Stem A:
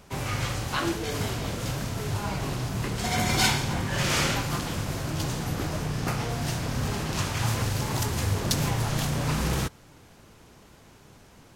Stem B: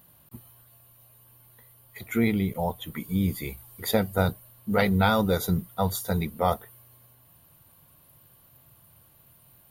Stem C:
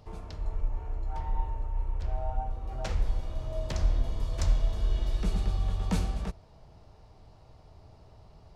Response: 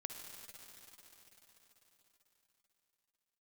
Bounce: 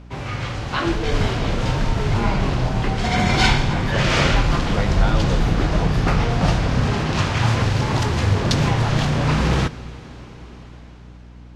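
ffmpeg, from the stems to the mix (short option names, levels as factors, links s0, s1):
-filter_complex "[0:a]volume=1,asplit=2[s0][s1];[s1]volume=0.398[s2];[1:a]volume=0.299[s3];[2:a]adelay=500,volume=0.944[s4];[3:a]atrim=start_sample=2205[s5];[s2][s5]afir=irnorm=-1:irlink=0[s6];[s0][s3][s4][s6]amix=inputs=4:normalize=0,lowpass=4100,dynaudnorm=f=130:g=13:m=2.24,aeval=exprs='val(0)+0.01*(sin(2*PI*60*n/s)+sin(2*PI*2*60*n/s)/2+sin(2*PI*3*60*n/s)/3+sin(2*PI*4*60*n/s)/4+sin(2*PI*5*60*n/s)/5)':c=same"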